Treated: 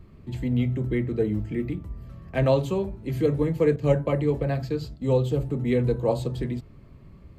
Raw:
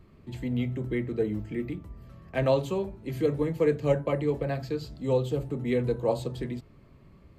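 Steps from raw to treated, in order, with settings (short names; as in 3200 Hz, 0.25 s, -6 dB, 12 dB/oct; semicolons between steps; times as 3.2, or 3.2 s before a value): 3.76–5.02 expander -36 dBFS; low shelf 190 Hz +7 dB; gain +1.5 dB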